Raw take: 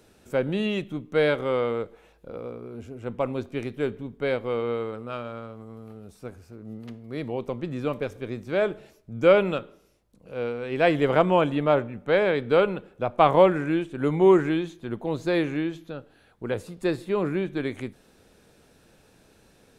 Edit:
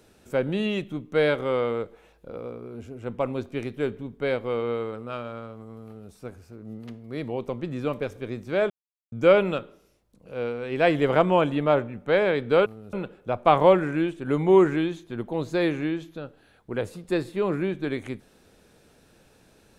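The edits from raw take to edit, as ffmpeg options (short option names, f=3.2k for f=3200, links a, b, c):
-filter_complex "[0:a]asplit=5[a][b][c][d][e];[a]atrim=end=8.7,asetpts=PTS-STARTPTS,afade=t=out:st=8.696:d=0.004:c=hsin[f];[b]atrim=start=8.7:end=9.12,asetpts=PTS-STARTPTS,volume=0[g];[c]atrim=start=9.12:end=12.662,asetpts=PTS-STARTPTS,afade=t=in:d=0.004:c=hsin[h];[d]atrim=start=5.848:end=6.122[i];[e]atrim=start=12.658[j];[f][g][h]concat=n=3:v=0:a=1[k];[k][i]acrossfade=d=0.004:c1=hsin:c2=hsin[l];[l][j]acrossfade=d=0.004:c1=hsin:c2=hsin"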